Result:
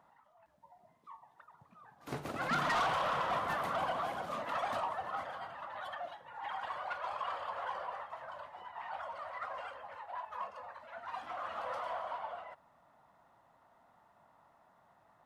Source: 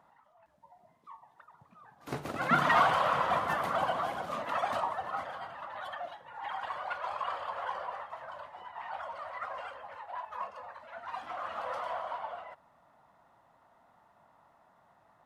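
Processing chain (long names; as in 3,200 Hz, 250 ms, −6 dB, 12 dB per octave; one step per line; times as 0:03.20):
soft clipping −26 dBFS, distortion −11 dB
level −2 dB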